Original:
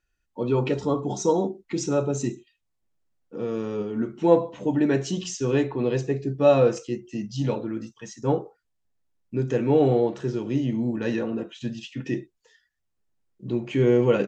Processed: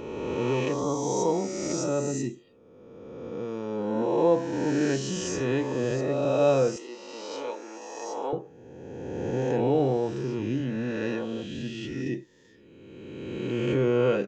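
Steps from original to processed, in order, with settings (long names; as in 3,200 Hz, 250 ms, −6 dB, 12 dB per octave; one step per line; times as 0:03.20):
peak hold with a rise ahead of every peak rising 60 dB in 2.07 s
0:06.76–0:08.33: Bessel high-pass filter 520 Hz, order 4
level −6.5 dB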